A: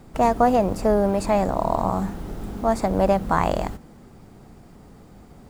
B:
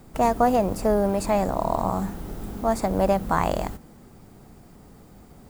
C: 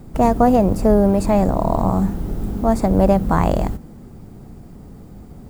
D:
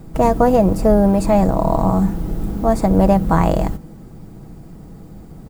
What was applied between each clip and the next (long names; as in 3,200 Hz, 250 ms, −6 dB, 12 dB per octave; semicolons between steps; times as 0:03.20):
high-shelf EQ 9,900 Hz +11 dB; level −2 dB
low-shelf EQ 490 Hz +11.5 dB
comb filter 6.2 ms, depth 36%; level +1 dB